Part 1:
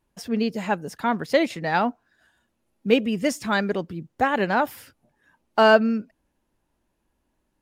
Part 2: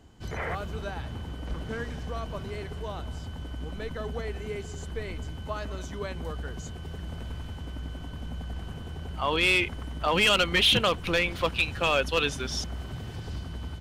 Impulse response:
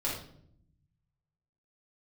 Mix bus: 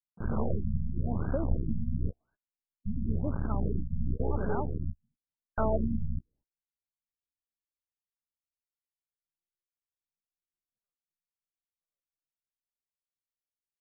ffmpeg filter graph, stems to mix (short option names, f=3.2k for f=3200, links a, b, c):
-filter_complex "[0:a]volume=-9.5dB,asplit=2[a][b];[1:a]acrusher=bits=4:dc=4:mix=0:aa=0.000001,acontrast=88,volume=2.5dB[c];[b]apad=whole_len=608632[d];[c][d]sidechaingate=range=-55dB:threshold=-58dB:ratio=16:detection=peak[e];[a][e]amix=inputs=2:normalize=0,equalizer=f=710:t=o:w=2.5:g=-5.5,agate=range=-30dB:threshold=-60dB:ratio=16:detection=peak,afftfilt=real='re*lt(b*sr/1024,230*pow(1700/230,0.5+0.5*sin(2*PI*0.95*pts/sr)))':imag='im*lt(b*sr/1024,230*pow(1700/230,0.5+0.5*sin(2*PI*0.95*pts/sr)))':win_size=1024:overlap=0.75"